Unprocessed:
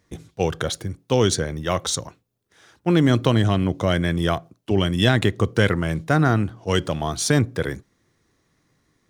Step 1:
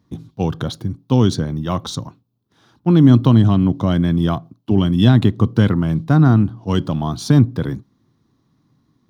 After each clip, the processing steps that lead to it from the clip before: graphic EQ 125/250/500/1000/2000/4000/8000 Hz +9/+11/-5/+7/-9/+5/-10 dB; gain -2.5 dB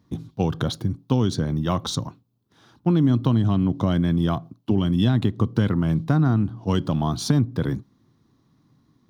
compressor 3:1, threshold -18 dBFS, peak gain reduction 9.5 dB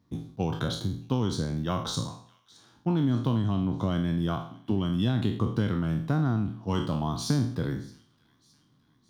spectral trails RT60 0.53 s; thin delay 0.617 s, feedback 52%, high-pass 2100 Hz, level -22 dB; gain -7 dB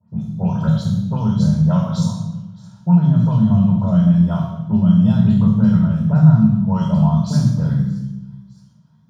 dispersion highs, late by 91 ms, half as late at 2400 Hz; reverb RT60 0.95 s, pre-delay 3 ms, DRR -1.5 dB; gain -5.5 dB

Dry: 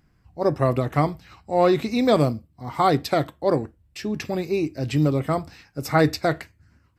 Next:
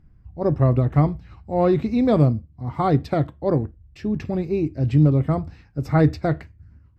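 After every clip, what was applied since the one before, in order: RIAA curve playback; gain -4 dB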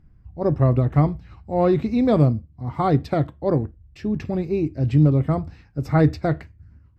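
nothing audible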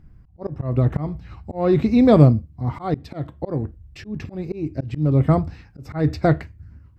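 auto swell 0.294 s; gain +5 dB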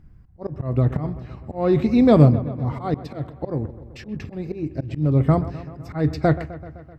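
dark delay 0.128 s, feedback 67%, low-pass 2500 Hz, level -15 dB; gain -1 dB

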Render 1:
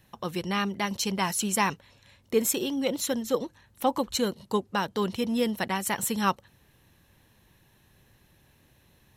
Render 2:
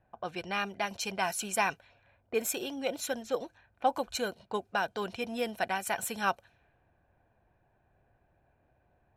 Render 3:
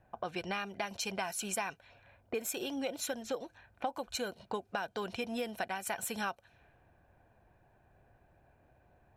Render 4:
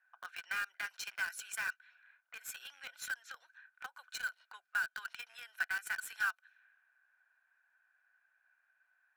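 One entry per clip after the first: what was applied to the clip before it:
bell 190 Hz -6 dB 1.4 oct; low-pass opened by the level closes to 1000 Hz, open at -27 dBFS; small resonant body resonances 700/1500/2400 Hz, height 13 dB, ringing for 25 ms; gain -6.5 dB
compressor 5:1, threshold -38 dBFS, peak gain reduction 15 dB; gain +4 dB
rattling part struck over -43 dBFS, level -44 dBFS; ladder high-pass 1400 Hz, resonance 75%; in parallel at -7 dB: bit-crush 7-bit; on the sum: gain +2.5 dB

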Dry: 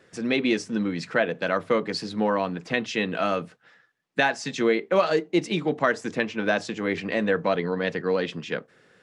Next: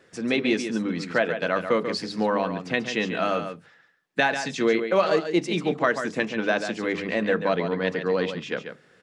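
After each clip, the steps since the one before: notches 50/100/150/200 Hz; echo 0.14 s -8.5 dB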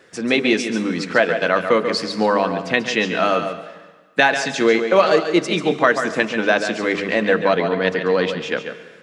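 low shelf 240 Hz -6 dB; plate-style reverb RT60 1.4 s, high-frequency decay 0.9×, pre-delay 0.115 s, DRR 13.5 dB; gain +7.5 dB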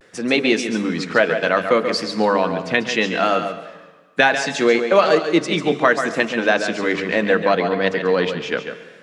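vibrato 0.68 Hz 59 cents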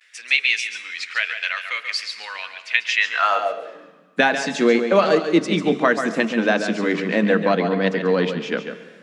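high-pass sweep 2300 Hz -> 200 Hz, 2.93–3.99; gain -3 dB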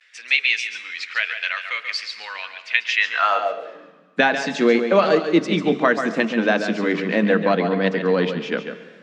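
LPF 5700 Hz 12 dB/oct

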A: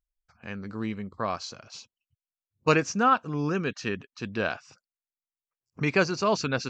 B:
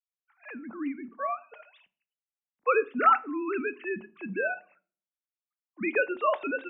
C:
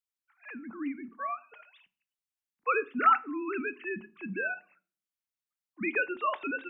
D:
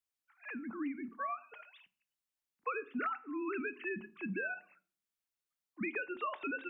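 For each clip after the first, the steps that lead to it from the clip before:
sine-wave speech; shoebox room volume 300 m³, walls furnished, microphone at 0.35 m; gain -2 dB
bell 590 Hz -10.5 dB 0.98 oct
compressor 16:1, threshold -34 dBFS, peak gain reduction 17.5 dB

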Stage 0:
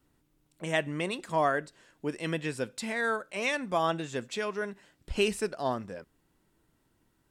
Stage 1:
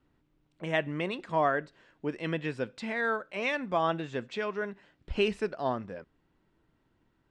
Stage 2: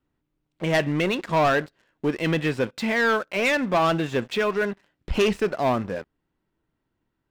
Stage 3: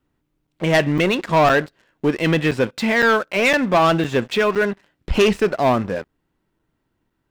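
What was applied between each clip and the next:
LPF 3400 Hz 12 dB/oct
sample leveller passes 3
crackling interface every 0.51 s, samples 256, zero, from 0.47; gain +5.5 dB

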